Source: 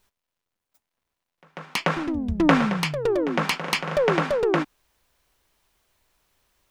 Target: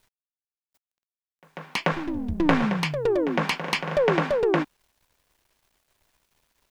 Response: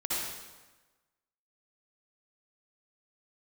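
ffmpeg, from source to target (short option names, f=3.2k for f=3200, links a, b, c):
-filter_complex "[0:a]asettb=1/sr,asplit=3[a][b][c];[a]atrim=end=1.924[d];[b]atrim=start=1.92:end=2.63,asetpts=PTS-STARTPTS,afade=t=in:d=0.004:c=qsin,afade=t=out:st=0.706:d=0.004:c=qsin,aeval=exprs='if(lt(val(0),0),0.447*val(0),val(0))':c=same[e];[c]atrim=start=2.626[f];[d][e]acrossfade=d=0.004:c1=hsin:c2=qsin[g];[g][f]acrossfade=d=0.004:c1=qsin:c2=hsin,highshelf=f=6k:g=-8,bandreject=f=1.3k:w=9.6,acrusher=bits=10:mix=0:aa=0.000001"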